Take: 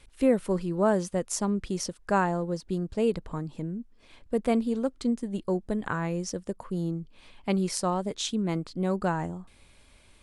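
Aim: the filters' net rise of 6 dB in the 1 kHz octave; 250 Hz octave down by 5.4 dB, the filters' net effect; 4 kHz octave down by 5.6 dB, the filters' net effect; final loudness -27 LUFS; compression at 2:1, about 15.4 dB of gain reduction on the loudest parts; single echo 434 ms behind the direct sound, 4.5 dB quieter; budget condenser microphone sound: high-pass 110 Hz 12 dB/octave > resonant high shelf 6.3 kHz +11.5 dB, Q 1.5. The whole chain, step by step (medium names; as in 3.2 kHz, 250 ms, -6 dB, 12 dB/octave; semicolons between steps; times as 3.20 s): peaking EQ 250 Hz -7.5 dB; peaking EQ 1 kHz +8.5 dB; peaking EQ 4 kHz -7.5 dB; compression 2:1, threshold -45 dBFS; high-pass 110 Hz 12 dB/octave; resonant high shelf 6.3 kHz +11.5 dB, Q 1.5; delay 434 ms -4.5 dB; trim +11 dB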